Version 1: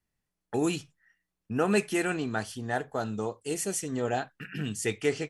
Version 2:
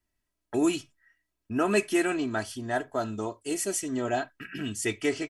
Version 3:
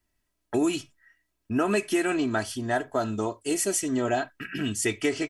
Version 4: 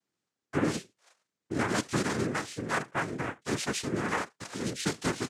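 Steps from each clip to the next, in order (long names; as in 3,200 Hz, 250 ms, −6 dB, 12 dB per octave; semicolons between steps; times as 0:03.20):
comb filter 3.1 ms, depth 66%
downward compressor, threshold −25 dBFS, peak gain reduction 7 dB; level +4.5 dB
cochlear-implant simulation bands 3; level −4.5 dB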